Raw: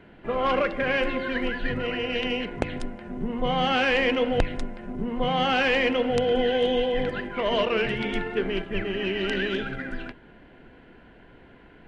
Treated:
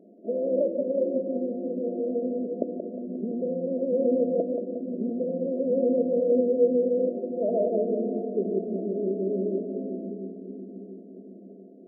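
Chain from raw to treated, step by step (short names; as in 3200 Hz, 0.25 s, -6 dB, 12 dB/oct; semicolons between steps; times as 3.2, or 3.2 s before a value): FFT band-pass 180–710 Hz; split-band echo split 360 Hz, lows 0.691 s, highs 0.178 s, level -5.5 dB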